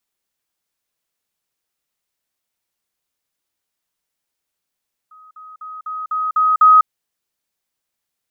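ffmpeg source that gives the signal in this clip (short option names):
-f lavfi -i "aevalsrc='pow(10,(-41.5+6*floor(t/0.25))/20)*sin(2*PI*1260*t)*clip(min(mod(t,0.25),0.2-mod(t,0.25))/0.005,0,1)':d=1.75:s=44100"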